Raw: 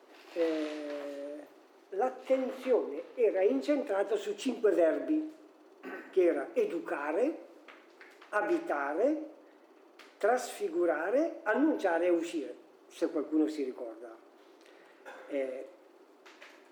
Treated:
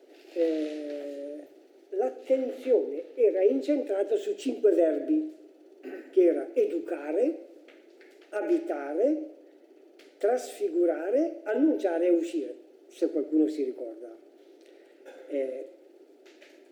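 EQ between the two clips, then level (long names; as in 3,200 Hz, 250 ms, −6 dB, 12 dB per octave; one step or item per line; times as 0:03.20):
low-shelf EQ 410 Hz +11 dB
phaser with its sweep stopped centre 440 Hz, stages 4
0.0 dB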